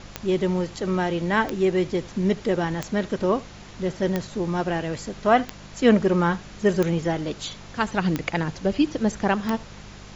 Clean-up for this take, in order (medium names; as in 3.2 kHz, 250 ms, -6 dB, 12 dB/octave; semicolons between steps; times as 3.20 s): de-click; de-hum 50.7 Hz, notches 4; noise print and reduce 27 dB; inverse comb 76 ms -22 dB